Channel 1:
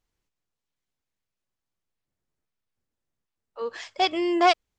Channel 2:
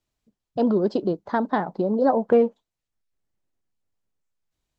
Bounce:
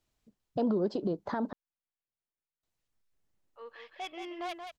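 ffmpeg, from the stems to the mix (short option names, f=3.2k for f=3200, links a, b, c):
-filter_complex "[0:a]lowpass=f=3.5k:w=0.5412,lowpass=f=3.5k:w=1.3066,lowshelf=f=460:g=-10,asoftclip=type=tanh:threshold=-22.5dB,volume=-11dB,asplit=2[a][b];[b]volume=-6.5dB[c];[1:a]acompressor=threshold=-22dB:ratio=6,volume=1dB,asplit=3[d][e][f];[d]atrim=end=1.53,asetpts=PTS-STARTPTS,afade=t=out:st=1.526:d=0.004:c=hsin[g];[e]atrim=start=1.53:end=2.63,asetpts=PTS-STARTPTS,volume=0[h];[f]atrim=start=2.63,asetpts=PTS-STARTPTS,afade=t=in:d=0.004:c=hsin[i];[g][h][i]concat=n=3:v=0:a=1[j];[c]aecho=0:1:179:1[k];[a][j][k]amix=inputs=3:normalize=0,alimiter=limit=-21.5dB:level=0:latency=1:release=149"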